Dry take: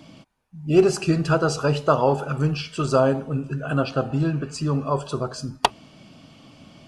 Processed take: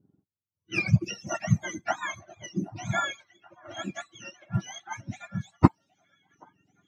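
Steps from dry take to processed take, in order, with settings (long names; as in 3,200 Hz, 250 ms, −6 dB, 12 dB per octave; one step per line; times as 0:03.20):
frequency axis turned over on the octave scale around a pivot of 950 Hz
low-shelf EQ 420 Hz +7 dB
reverb reduction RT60 1.2 s
high-shelf EQ 7,300 Hz −6.5 dB
low-pass that shuts in the quiet parts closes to 410 Hz, open at −22 dBFS
on a send: echo through a band-pass that steps 778 ms, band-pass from 680 Hz, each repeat 0.7 octaves, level −11.5 dB
on the sum: expander for the loud parts 1.5 to 1, over −46 dBFS
level −2.5 dB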